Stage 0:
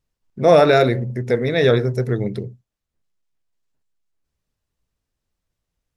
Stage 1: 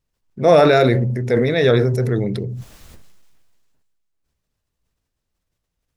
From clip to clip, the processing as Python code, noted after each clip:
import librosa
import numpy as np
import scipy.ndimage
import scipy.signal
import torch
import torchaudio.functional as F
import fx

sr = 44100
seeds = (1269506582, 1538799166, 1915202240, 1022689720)

y = fx.sustainer(x, sr, db_per_s=28.0)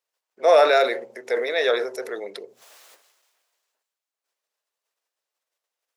y = scipy.signal.sosfilt(scipy.signal.butter(4, 500.0, 'highpass', fs=sr, output='sos'), x)
y = y * 10.0 ** (-1.5 / 20.0)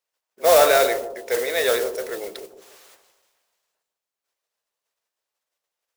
y = fx.mod_noise(x, sr, seeds[0], snr_db=10)
y = fx.echo_bbd(y, sr, ms=150, stages=1024, feedback_pct=40, wet_db=-9.5)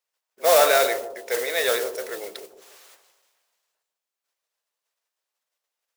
y = fx.low_shelf(x, sr, hz=380.0, db=-8.5)